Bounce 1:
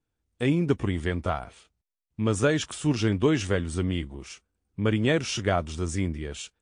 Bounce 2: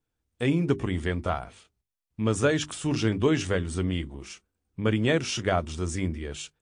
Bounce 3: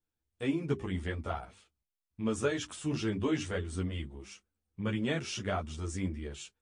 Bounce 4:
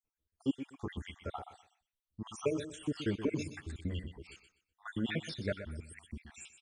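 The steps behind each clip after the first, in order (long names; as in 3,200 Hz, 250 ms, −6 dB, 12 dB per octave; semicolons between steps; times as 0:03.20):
mains-hum notches 50/100/150/200/250/300/350/400 Hz
string-ensemble chorus; level −4.5 dB
time-frequency cells dropped at random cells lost 69%; repeating echo 124 ms, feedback 23%, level −11 dB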